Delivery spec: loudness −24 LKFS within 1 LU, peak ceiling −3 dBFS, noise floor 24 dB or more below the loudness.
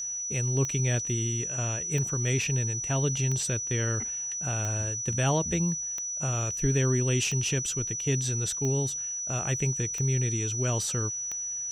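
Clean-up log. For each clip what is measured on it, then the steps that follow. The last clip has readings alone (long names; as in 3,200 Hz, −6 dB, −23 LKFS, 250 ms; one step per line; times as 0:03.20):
number of clicks 9; interfering tone 5,900 Hz; level of the tone −31 dBFS; integrated loudness −27.5 LKFS; sample peak −13.0 dBFS; target loudness −24.0 LKFS
→ click removal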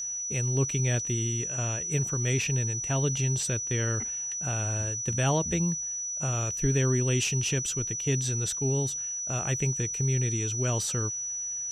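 number of clicks 0; interfering tone 5,900 Hz; level of the tone −31 dBFS
→ notch filter 5,900 Hz, Q 30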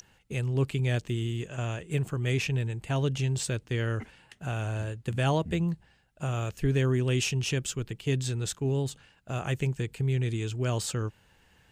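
interfering tone none found; integrated loudness −30.0 LKFS; sample peak −13.5 dBFS; target loudness −24.0 LKFS
→ level +6 dB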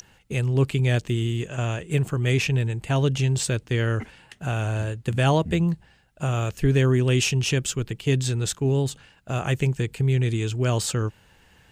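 integrated loudness −24.0 LKFS; sample peak −7.5 dBFS; background noise floor −57 dBFS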